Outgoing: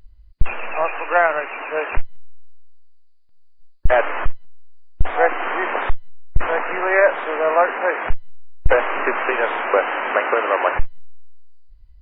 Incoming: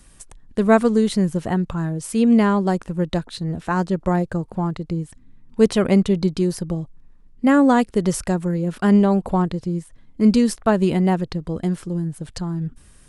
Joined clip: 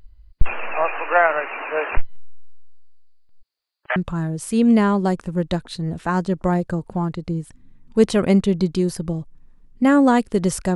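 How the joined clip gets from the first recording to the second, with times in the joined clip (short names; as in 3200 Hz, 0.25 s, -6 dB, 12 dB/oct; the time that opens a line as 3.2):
outgoing
3.41–3.96 HPF 230 Hz -> 1300 Hz
3.96 switch to incoming from 1.58 s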